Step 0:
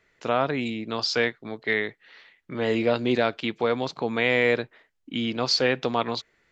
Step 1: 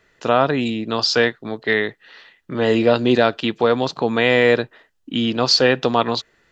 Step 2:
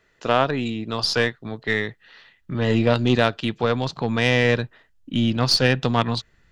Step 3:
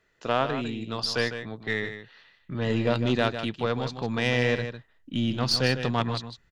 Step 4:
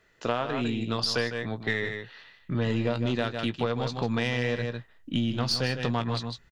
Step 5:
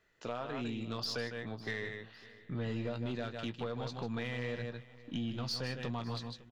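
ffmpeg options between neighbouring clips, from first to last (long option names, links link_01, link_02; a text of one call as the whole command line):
ffmpeg -i in.wav -af "bandreject=frequency=2200:width=6.2,volume=7.5dB" out.wav
ffmpeg -i in.wav -af "asubboost=boost=6.5:cutoff=160,aeval=exprs='0.891*(cos(1*acos(clip(val(0)/0.891,-1,1)))-cos(1*PI/2))+0.0891*(cos(3*acos(clip(val(0)/0.891,-1,1)))-cos(3*PI/2))+0.0316*(cos(6*acos(clip(val(0)/0.891,-1,1)))-cos(6*PI/2))':channel_layout=same,volume=-1dB" out.wav
ffmpeg -i in.wav -af "aecho=1:1:153:0.335,volume=-6dB" out.wav
ffmpeg -i in.wav -filter_complex "[0:a]asplit=2[link_01][link_02];[link_02]adelay=17,volume=-11.5dB[link_03];[link_01][link_03]amix=inputs=2:normalize=0,acompressor=threshold=-28dB:ratio=6,volume=4.5dB" out.wav
ffmpeg -i in.wav -af "asoftclip=type=tanh:threshold=-19.5dB,aecho=1:1:555|1110|1665:0.1|0.046|0.0212,volume=-8.5dB" out.wav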